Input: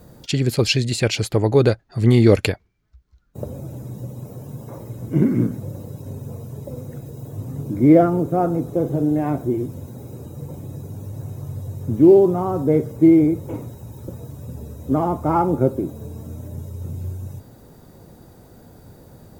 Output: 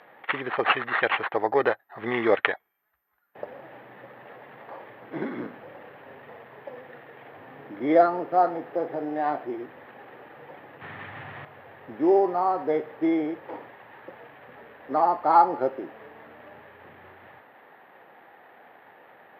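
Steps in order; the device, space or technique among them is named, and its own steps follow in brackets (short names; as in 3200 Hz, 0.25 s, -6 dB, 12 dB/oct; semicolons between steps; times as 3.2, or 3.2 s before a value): 10.81–11.45 tone controls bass +14 dB, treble +11 dB; toy sound module (decimation joined by straight lines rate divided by 8×; pulse-width modulation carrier 13000 Hz; speaker cabinet 630–3800 Hz, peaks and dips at 790 Hz +7 dB, 1200 Hz +3 dB, 1800 Hz +10 dB)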